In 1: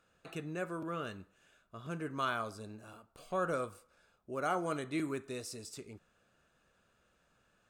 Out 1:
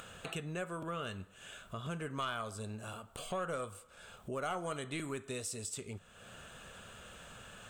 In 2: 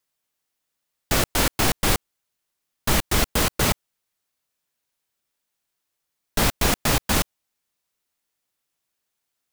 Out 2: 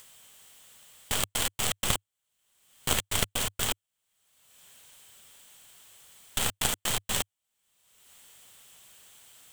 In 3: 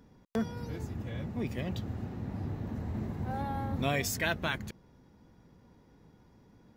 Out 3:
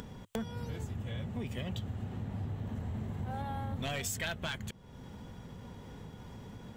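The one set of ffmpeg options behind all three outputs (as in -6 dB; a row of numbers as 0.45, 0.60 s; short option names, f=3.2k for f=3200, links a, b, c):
-af "aeval=exprs='0.501*(cos(1*acos(clip(val(0)/0.501,-1,1)))-cos(1*PI/2))+0.224*(cos(3*acos(clip(val(0)/0.501,-1,1)))-cos(3*PI/2))+0.0891*(cos(6*acos(clip(val(0)/0.501,-1,1)))-cos(6*PI/2))+0.0447*(cos(8*acos(clip(val(0)/0.501,-1,1)))-cos(8*PI/2))':c=same,equalizer=f=100:t=o:w=0.33:g=4,equalizer=f=315:t=o:w=0.33:g=-8,equalizer=f=3.15k:t=o:w=0.33:g=8,equalizer=f=5k:t=o:w=0.33:g=-4,equalizer=f=8k:t=o:w=0.33:g=8,acompressor=mode=upward:threshold=-27dB:ratio=2.5,volume=-1dB"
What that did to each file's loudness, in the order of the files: -3.0, -6.5, -4.5 LU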